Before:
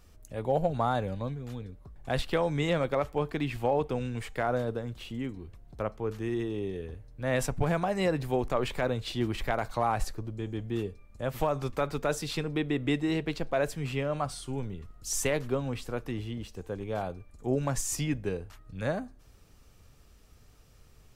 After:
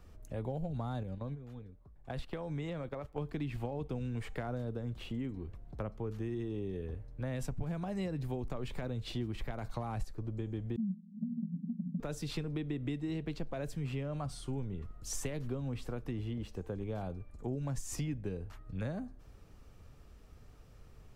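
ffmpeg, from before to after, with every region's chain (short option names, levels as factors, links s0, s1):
-filter_complex "[0:a]asettb=1/sr,asplit=3[s0][s1][s2];[s0]atrim=end=1.034[s3];[s1]atrim=start=1.03:end=3.18,asetpts=PTS-STARTPTS,afade=t=in:d=0.004:c=qsin,afade=t=out:st=2.146:d=0.004:c=qsin,agate=range=0.282:threshold=0.0158:ratio=16:release=100:detection=peak,acompressor=threshold=0.0141:ratio=2.5:attack=3.2:release=140:knee=1:detection=peak[s4];[s2]atrim=start=3.176[s5];[s3][s4]acrossfade=d=0.004:c1=hsin:c2=qsin[s6];[s6][s5]acrossfade=d=0.004:c1=qsin:c2=hsin,asettb=1/sr,asplit=3[s7][s8][s9];[s7]atrim=end=10.764[s10];[s8]atrim=start=10.76:end=12,asetpts=PTS-STARTPTS,afade=t=in:d=0.004:c=qsin,afade=t=out:st=1.236:d=0.004:c=qsin,aeval=exprs='0.15*sin(PI/2*3.16*val(0)/0.15)':c=same,asuperpass=centerf=200:order=12:qfactor=2.7,aecho=1:1:4.9:0.94,atrim=end_sample=54684[s11];[s9]atrim=start=11.996[s12];[s10][s11]acrossfade=d=0.004:c1=hsin:c2=qsin[s13];[s13][s12]acrossfade=d=0.004:c1=qsin:c2=hsin,acrossover=split=280|3000[s14][s15][s16];[s15]acompressor=threshold=0.00708:ratio=2.5[s17];[s14][s17][s16]amix=inputs=3:normalize=0,highshelf=f=2600:g=-10.5,acompressor=threshold=0.0158:ratio=4,volume=1.26"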